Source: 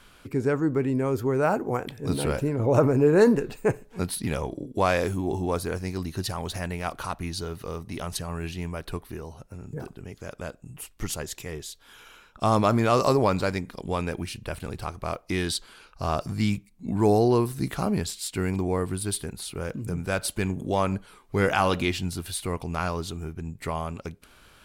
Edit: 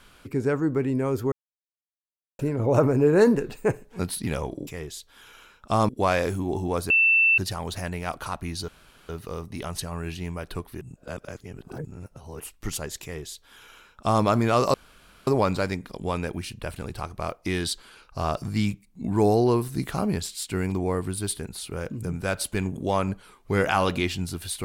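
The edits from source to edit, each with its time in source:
0:01.32–0:02.39: silence
0:05.68–0:06.16: beep over 2,670 Hz −15.5 dBFS
0:07.46: splice in room tone 0.41 s
0:09.18–0:10.77: reverse
0:11.39–0:12.61: duplicate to 0:04.67
0:13.11: splice in room tone 0.53 s

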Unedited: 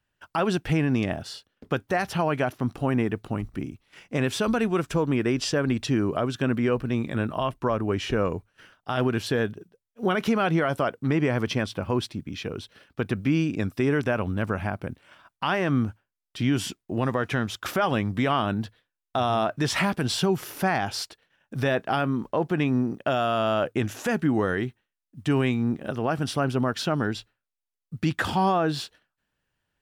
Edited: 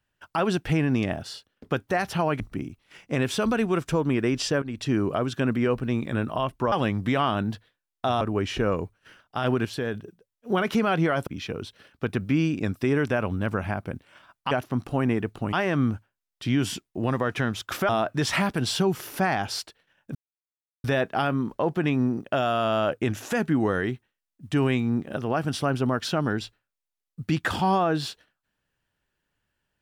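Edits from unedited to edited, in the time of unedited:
0:02.40–0:03.42: move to 0:15.47
0:05.64–0:05.96: fade in, from −16.5 dB
0:09.18–0:09.47: clip gain −4.5 dB
0:10.80–0:12.23: remove
0:17.83–0:19.32: move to 0:07.74
0:21.58: splice in silence 0.69 s

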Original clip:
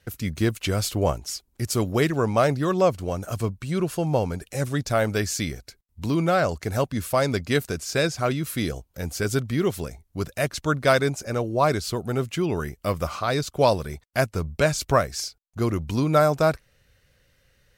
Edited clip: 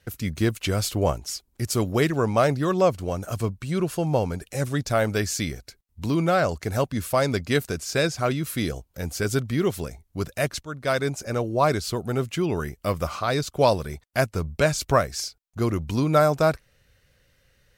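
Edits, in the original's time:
0:10.63–0:11.23: fade in, from −16 dB

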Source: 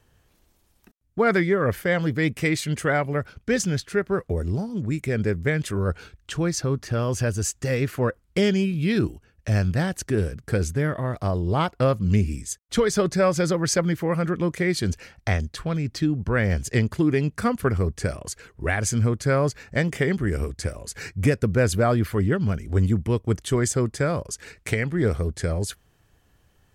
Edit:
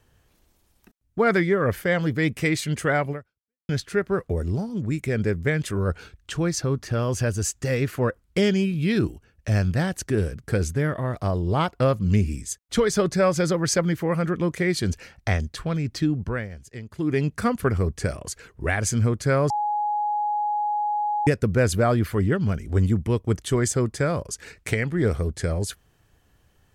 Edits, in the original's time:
0:03.11–0:03.69: fade out exponential
0:16.18–0:17.20: duck −16 dB, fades 0.31 s
0:19.50–0:21.27: beep over 835 Hz −21.5 dBFS

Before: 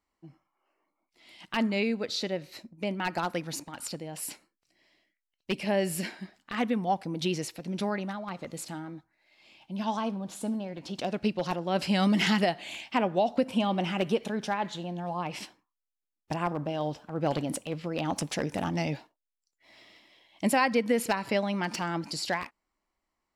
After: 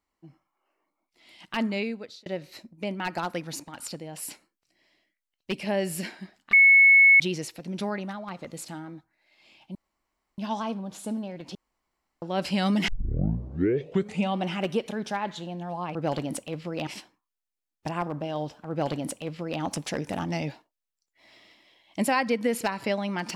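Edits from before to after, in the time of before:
0:01.72–0:02.26: fade out
0:06.53–0:07.20: beep over 2,200 Hz −12 dBFS
0:09.75: splice in room tone 0.63 s
0:10.92–0:11.59: fill with room tone
0:12.25: tape start 1.49 s
0:17.14–0:18.06: duplicate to 0:15.32

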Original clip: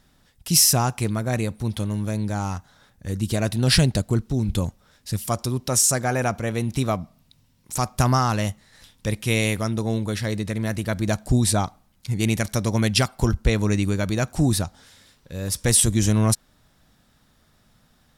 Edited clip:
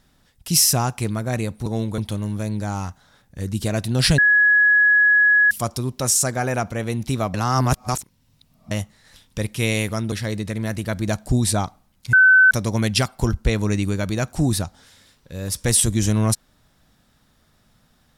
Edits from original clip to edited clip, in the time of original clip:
0:03.86–0:05.19: beep over 1,680 Hz −11.5 dBFS
0:07.02–0:08.39: reverse
0:09.80–0:10.12: move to 0:01.66
0:12.13–0:12.51: beep over 1,520 Hz −8.5 dBFS

